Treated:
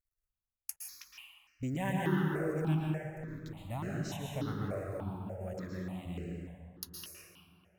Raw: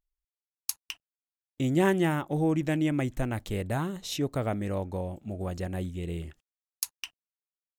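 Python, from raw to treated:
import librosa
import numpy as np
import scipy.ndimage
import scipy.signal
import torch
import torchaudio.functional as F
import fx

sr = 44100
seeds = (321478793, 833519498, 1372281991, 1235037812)

y = fx.dispersion(x, sr, late='highs', ms=115.0, hz=330.0, at=(0.83, 1.63))
y = fx.level_steps(y, sr, step_db=22, at=(2.8, 3.65))
y = fx.highpass(y, sr, hz=160.0, slope=12, at=(5.55, 6.06))
y = fx.quant_companded(y, sr, bits=8)
y = fx.echo_wet_lowpass(y, sr, ms=600, feedback_pct=51, hz=1700.0, wet_db=-18.5)
y = fx.rev_plate(y, sr, seeds[0], rt60_s=2.1, hf_ratio=0.45, predelay_ms=105, drr_db=-2.5)
y = fx.phaser_held(y, sr, hz=3.4, low_hz=870.0, high_hz=3500.0)
y = y * 10.0 ** (-7.5 / 20.0)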